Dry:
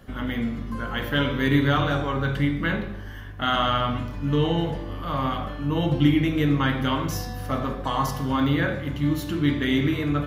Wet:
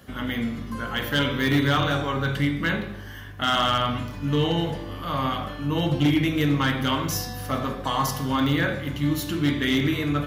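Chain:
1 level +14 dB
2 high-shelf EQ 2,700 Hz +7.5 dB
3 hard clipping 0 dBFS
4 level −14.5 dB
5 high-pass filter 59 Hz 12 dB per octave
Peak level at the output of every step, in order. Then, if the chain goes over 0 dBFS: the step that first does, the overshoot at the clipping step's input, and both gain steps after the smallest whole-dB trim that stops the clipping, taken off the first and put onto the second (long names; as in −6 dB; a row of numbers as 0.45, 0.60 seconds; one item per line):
+6.5, +7.5, 0.0, −14.5, −10.5 dBFS
step 1, 7.5 dB
step 1 +6 dB, step 4 −6.5 dB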